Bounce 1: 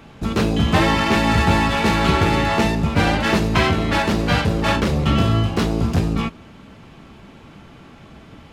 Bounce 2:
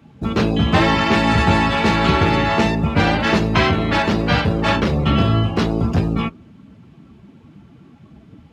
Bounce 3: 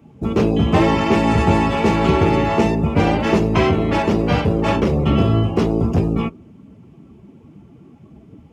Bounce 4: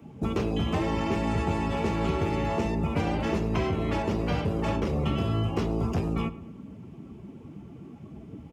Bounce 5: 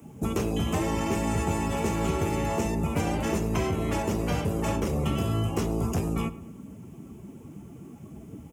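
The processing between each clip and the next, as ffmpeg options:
ffmpeg -i in.wav -af "highpass=60,afftdn=noise_reduction=13:noise_floor=-36,volume=1.5dB" out.wav
ffmpeg -i in.wav -af "equalizer=frequency=400:width_type=o:width=0.67:gain=5,equalizer=frequency=1600:width_type=o:width=0.67:gain=-8,equalizer=frequency=4000:width_type=o:width=0.67:gain=-10" out.wav
ffmpeg -i in.wav -filter_complex "[0:a]acrossover=split=91|830|5800[link_01][link_02][link_03][link_04];[link_01]acompressor=threshold=-34dB:ratio=4[link_05];[link_02]acompressor=threshold=-29dB:ratio=4[link_06];[link_03]acompressor=threshold=-38dB:ratio=4[link_07];[link_04]acompressor=threshold=-55dB:ratio=4[link_08];[link_05][link_06][link_07][link_08]amix=inputs=4:normalize=0,asplit=2[link_09][link_10];[link_10]adelay=109,lowpass=frequency=2400:poles=1,volume=-16dB,asplit=2[link_11][link_12];[link_12]adelay=109,lowpass=frequency=2400:poles=1,volume=0.51,asplit=2[link_13][link_14];[link_14]adelay=109,lowpass=frequency=2400:poles=1,volume=0.51,asplit=2[link_15][link_16];[link_16]adelay=109,lowpass=frequency=2400:poles=1,volume=0.51,asplit=2[link_17][link_18];[link_18]adelay=109,lowpass=frequency=2400:poles=1,volume=0.51[link_19];[link_09][link_11][link_13][link_15][link_17][link_19]amix=inputs=6:normalize=0" out.wav
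ffmpeg -i in.wav -af "aexciter=amount=5.8:drive=5:freq=6200" out.wav

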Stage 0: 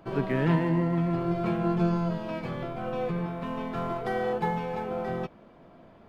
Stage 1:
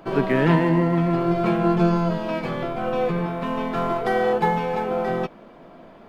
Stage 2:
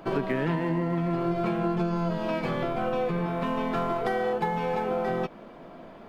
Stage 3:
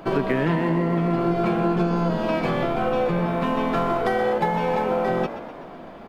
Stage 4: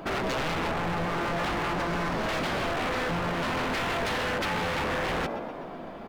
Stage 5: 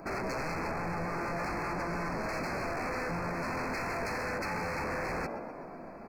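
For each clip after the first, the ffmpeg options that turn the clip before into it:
ffmpeg -i in.wav -af "equalizer=frequency=86:width=1.2:gain=-12.5,volume=8.5dB" out.wav
ffmpeg -i in.wav -af "acompressor=threshold=-24dB:ratio=6" out.wav
ffmpeg -i in.wav -filter_complex "[0:a]asplit=8[link_01][link_02][link_03][link_04][link_05][link_06][link_07][link_08];[link_02]adelay=126,afreqshift=62,volume=-12.5dB[link_09];[link_03]adelay=252,afreqshift=124,volume=-17.1dB[link_10];[link_04]adelay=378,afreqshift=186,volume=-21.7dB[link_11];[link_05]adelay=504,afreqshift=248,volume=-26.2dB[link_12];[link_06]adelay=630,afreqshift=310,volume=-30.8dB[link_13];[link_07]adelay=756,afreqshift=372,volume=-35.4dB[link_14];[link_08]adelay=882,afreqshift=434,volume=-40dB[link_15];[link_01][link_09][link_10][link_11][link_12][link_13][link_14][link_15]amix=inputs=8:normalize=0,volume=5dB" out.wav
ffmpeg -i in.wav -af "aeval=exprs='0.0631*(abs(mod(val(0)/0.0631+3,4)-2)-1)':channel_layout=same" out.wav
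ffmpeg -i in.wav -af "asuperstop=centerf=3300:order=20:qfactor=2.1,volume=-5.5dB" out.wav

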